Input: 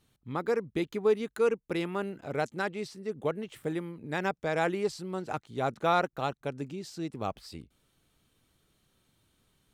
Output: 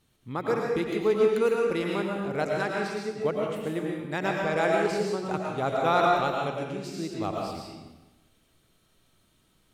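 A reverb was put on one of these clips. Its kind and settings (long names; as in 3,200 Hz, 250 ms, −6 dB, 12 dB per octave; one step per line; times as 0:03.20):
comb and all-pass reverb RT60 1.1 s, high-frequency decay 0.9×, pre-delay 70 ms, DRR −1.5 dB
level +1 dB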